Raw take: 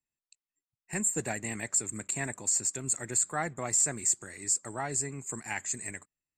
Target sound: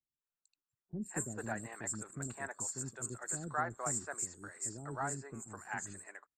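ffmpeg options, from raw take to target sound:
ffmpeg -i in.wav -filter_complex "[0:a]highshelf=frequency=1800:width_type=q:width=3:gain=-6.5,acrossover=split=430|4800[link_01][link_02][link_03];[link_03]adelay=130[link_04];[link_02]adelay=210[link_05];[link_01][link_05][link_04]amix=inputs=3:normalize=0,volume=-4dB" out.wav

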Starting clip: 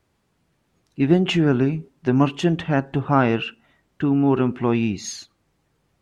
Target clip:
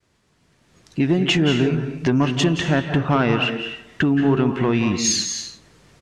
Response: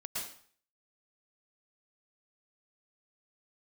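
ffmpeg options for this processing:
-filter_complex "[0:a]acompressor=threshold=-36dB:ratio=2.5,highshelf=frequency=4900:gain=11.5,asplit=2[link_01][link_02];[link_02]adelay=181,lowpass=frequency=2000:poles=1,volume=-21.5dB,asplit=2[link_03][link_04];[link_04]adelay=181,lowpass=frequency=2000:poles=1,volume=0.41,asplit=2[link_05][link_06];[link_06]adelay=181,lowpass=frequency=2000:poles=1,volume=0.41[link_07];[link_01][link_03][link_05][link_07]amix=inputs=4:normalize=0,dynaudnorm=framelen=540:gausssize=3:maxgain=7dB,aeval=exprs='0.376*sin(PI/2*1.78*val(0)/0.376)':channel_layout=same,agate=range=-33dB:threshold=-53dB:ratio=3:detection=peak,lowpass=6700,equalizer=frequency=1800:width=4:gain=2.5,bandreject=frequency=810:width=14,asplit=2[link_08][link_09];[1:a]atrim=start_sample=2205,afade=type=out:start_time=0.27:duration=0.01,atrim=end_sample=12348,asetrate=28224,aresample=44100[link_10];[link_09][link_10]afir=irnorm=-1:irlink=0,volume=-8.5dB[link_11];[link_08][link_11]amix=inputs=2:normalize=0,volume=-3.5dB"

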